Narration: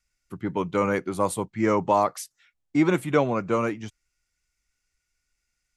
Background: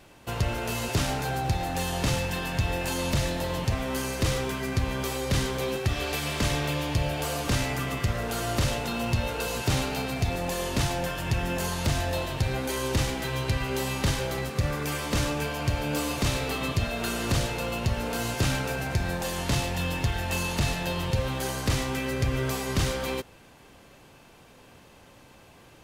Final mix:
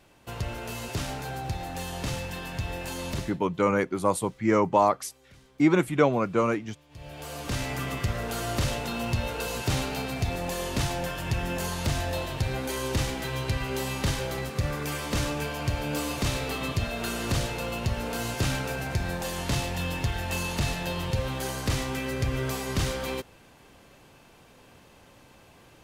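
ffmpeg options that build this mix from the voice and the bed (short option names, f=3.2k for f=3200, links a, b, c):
-filter_complex "[0:a]adelay=2850,volume=0dB[a];[1:a]volume=22.5dB,afade=t=out:st=3.12:d=0.28:silence=0.0630957,afade=t=in:st=6.89:d=0.95:silence=0.0398107[b];[a][b]amix=inputs=2:normalize=0"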